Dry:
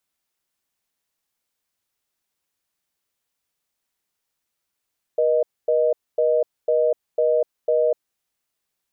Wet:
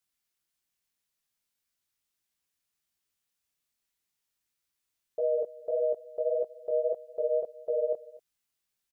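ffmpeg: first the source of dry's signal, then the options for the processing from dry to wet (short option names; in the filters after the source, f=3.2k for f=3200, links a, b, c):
-f lavfi -i "aevalsrc='0.119*(sin(2*PI*480*t)+sin(2*PI*620*t))*clip(min(mod(t,0.5),0.25-mod(t,0.5))/0.005,0,1)':d=2.94:s=44100"
-af "equalizer=f=610:w=0.51:g=-6.5,flanger=delay=16:depth=6.6:speed=1.7,aecho=1:1:242:0.0944"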